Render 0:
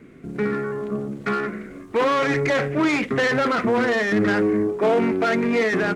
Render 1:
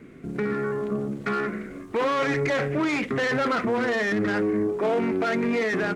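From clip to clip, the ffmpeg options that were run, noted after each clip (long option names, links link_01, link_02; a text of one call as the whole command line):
ffmpeg -i in.wav -af "alimiter=limit=-17.5dB:level=0:latency=1:release=100" out.wav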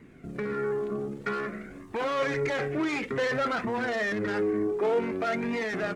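ffmpeg -i in.wav -af "flanger=delay=1:depth=1.8:regen=45:speed=0.54:shape=triangular" out.wav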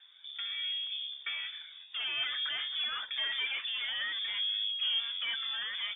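ffmpeg -i in.wav -af "lowpass=frequency=3100:width_type=q:width=0.5098,lowpass=frequency=3100:width_type=q:width=0.6013,lowpass=frequency=3100:width_type=q:width=0.9,lowpass=frequency=3100:width_type=q:width=2.563,afreqshift=-3700,volume=-6.5dB" out.wav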